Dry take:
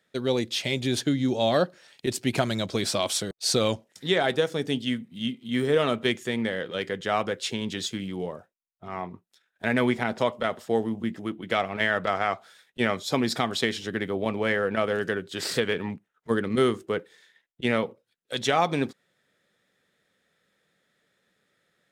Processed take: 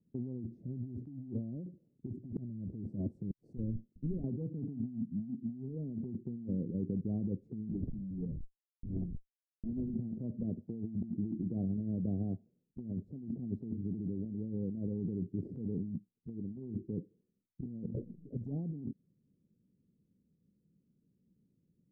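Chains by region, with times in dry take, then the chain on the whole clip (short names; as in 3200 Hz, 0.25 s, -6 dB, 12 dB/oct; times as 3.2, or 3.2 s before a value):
3.57–4.24 tube stage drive 33 dB, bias 0.75 + low shelf 69 Hz +6.5 dB
7.71–9.94 bell 9100 Hz -10 dB 1.4 oct + Schmitt trigger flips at -40 dBFS
17.64–18.48 high shelf 4800 Hz +10 dB + envelope flanger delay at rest 8.6 ms, full sweep at -19.5 dBFS + sustainer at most 27 dB/s
whole clip: inverse Chebyshev low-pass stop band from 1200 Hz, stop band 70 dB; negative-ratio compressor -40 dBFS, ratio -1; gain +1.5 dB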